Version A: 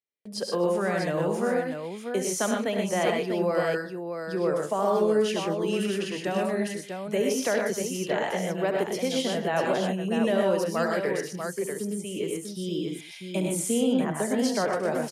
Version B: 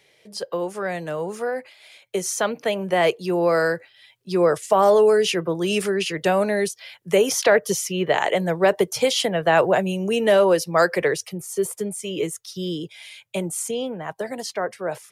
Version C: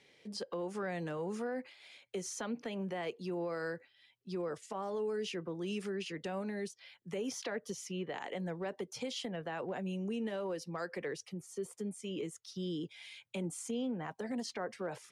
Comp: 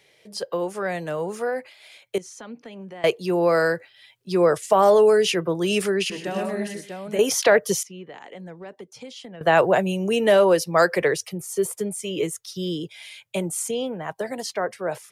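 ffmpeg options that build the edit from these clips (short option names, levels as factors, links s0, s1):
-filter_complex "[2:a]asplit=2[s0][s1];[1:a]asplit=4[s2][s3][s4][s5];[s2]atrim=end=2.182[s6];[s0]atrim=start=2.178:end=3.042[s7];[s3]atrim=start=3.038:end=6.102[s8];[0:a]atrim=start=6.098:end=7.192[s9];[s4]atrim=start=7.188:end=7.832[s10];[s1]atrim=start=7.828:end=9.412[s11];[s5]atrim=start=9.408[s12];[s6][s7]acrossfade=d=0.004:c1=hsin:c2=hsin[s13];[s13][s8]acrossfade=d=0.004:c1=hsin:c2=hsin[s14];[s14][s9]acrossfade=d=0.004:c1=hsin:c2=hsin[s15];[s15][s10]acrossfade=d=0.004:c1=hsin:c2=hsin[s16];[s16][s11]acrossfade=d=0.004:c1=hsin:c2=hsin[s17];[s17][s12]acrossfade=d=0.004:c1=hsin:c2=hsin"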